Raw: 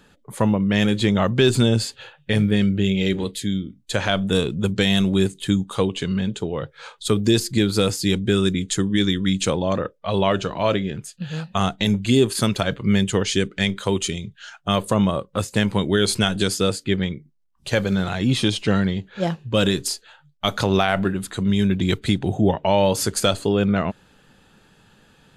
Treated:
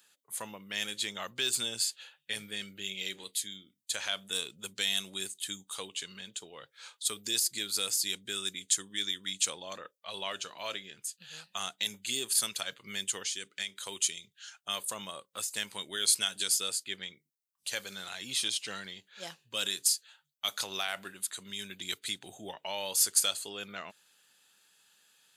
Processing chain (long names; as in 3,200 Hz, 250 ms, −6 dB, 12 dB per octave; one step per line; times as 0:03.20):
first difference
0:13.16–0:13.93: downward compressor, threshold −32 dBFS, peak gain reduction 7.5 dB